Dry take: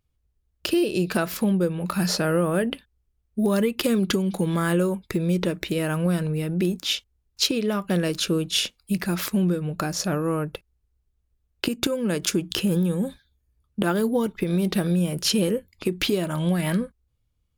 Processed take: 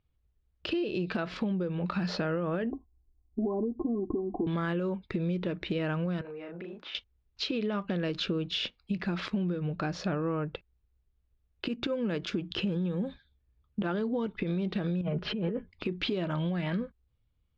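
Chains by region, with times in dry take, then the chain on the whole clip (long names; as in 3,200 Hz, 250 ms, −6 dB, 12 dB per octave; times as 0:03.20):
0:02.71–0:04.47: Chebyshev low-pass with heavy ripple 1,100 Hz, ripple 9 dB + spectral tilt −2 dB per octave + comb filter 2.8 ms, depth 88%
0:06.21–0:06.95: three-way crossover with the lows and the highs turned down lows −19 dB, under 430 Hz, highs −18 dB, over 2,100 Hz + double-tracking delay 35 ms −2.5 dB + downward compressor 4 to 1, threshold −37 dBFS
0:15.01–0:15.71: low-pass filter 1,700 Hz + comb filter 4.8 ms, depth 60% + compressor whose output falls as the input rises −26 dBFS
whole clip: brickwall limiter −16 dBFS; low-pass filter 4,000 Hz 24 dB per octave; downward compressor, threshold −26 dBFS; level −1.5 dB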